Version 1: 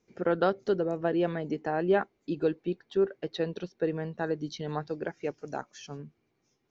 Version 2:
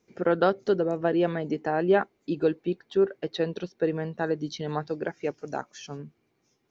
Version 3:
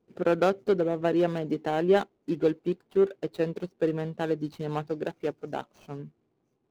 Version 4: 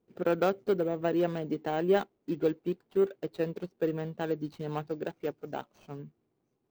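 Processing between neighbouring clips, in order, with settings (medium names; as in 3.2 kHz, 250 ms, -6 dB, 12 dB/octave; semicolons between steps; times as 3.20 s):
bass shelf 60 Hz -7 dB; trim +3.5 dB
median filter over 25 samples
careless resampling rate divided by 2×, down filtered, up hold; trim -3.5 dB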